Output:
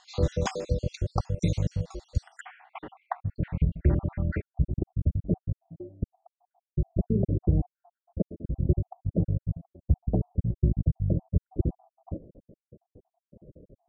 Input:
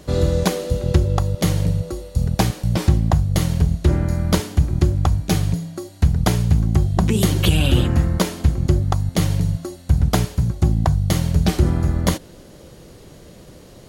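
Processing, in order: random spectral dropouts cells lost 62%; steep low-pass 7300 Hz 36 dB/oct, from 2.39 s 2400 Hz, from 4.4 s 630 Hz; gain -6 dB

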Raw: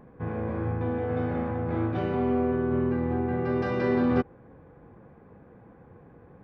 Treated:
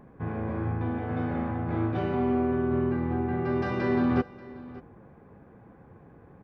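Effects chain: notch 490 Hz, Q 16; on a send: echo 0.585 s -19 dB

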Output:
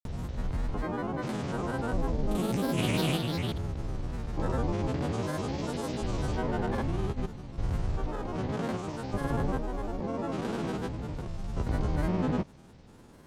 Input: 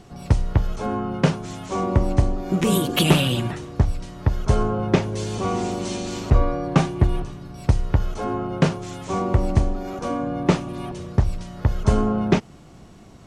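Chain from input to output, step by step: stepped spectrum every 0.4 s; grains, grains 20/s, pitch spread up and down by 7 st; gain -4.5 dB

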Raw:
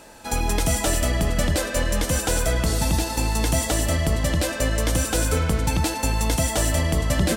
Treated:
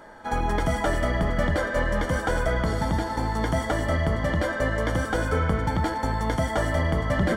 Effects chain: polynomial smoothing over 41 samples; tilt shelf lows -4.5 dB; in parallel at -11 dB: hard clip -19 dBFS, distortion -22 dB; on the sum: reverb RT60 0.30 s, pre-delay 5 ms, DRR 12.5 dB

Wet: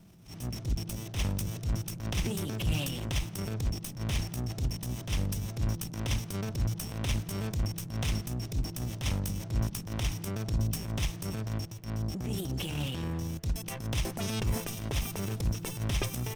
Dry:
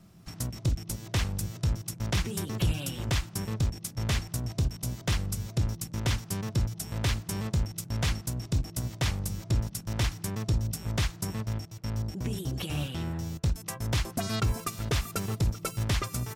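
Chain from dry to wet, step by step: minimum comb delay 0.35 ms; transient shaper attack -11 dB, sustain +5 dB

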